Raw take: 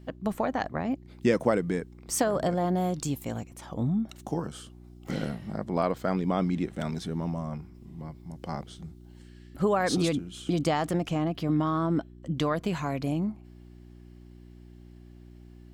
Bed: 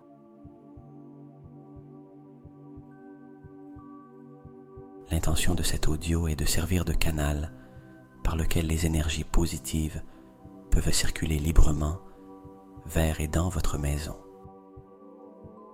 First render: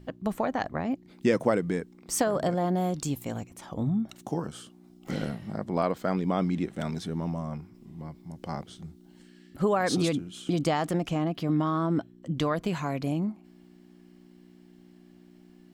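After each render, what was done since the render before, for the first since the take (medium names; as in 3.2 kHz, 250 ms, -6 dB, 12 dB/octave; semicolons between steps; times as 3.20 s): de-hum 60 Hz, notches 2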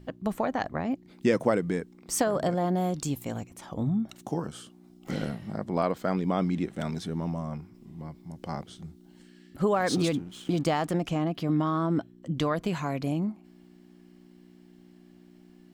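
9.74–10.91 s: hysteresis with a dead band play -44 dBFS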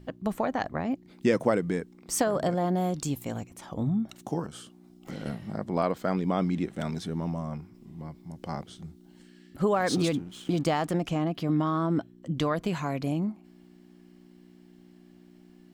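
4.46–5.26 s: compression 2:1, threshold -38 dBFS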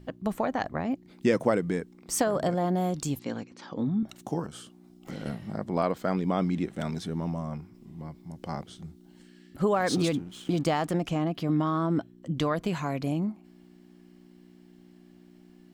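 3.19–4.03 s: cabinet simulation 170–5700 Hz, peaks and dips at 260 Hz +5 dB, 480 Hz +4 dB, 680 Hz -7 dB, 1.6 kHz +4 dB, 4.5 kHz +8 dB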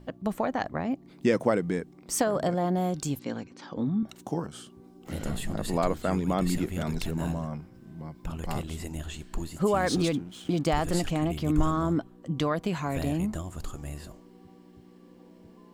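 add bed -9.5 dB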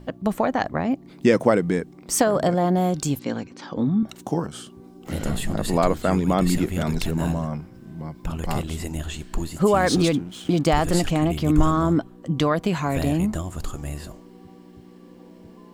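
trim +6.5 dB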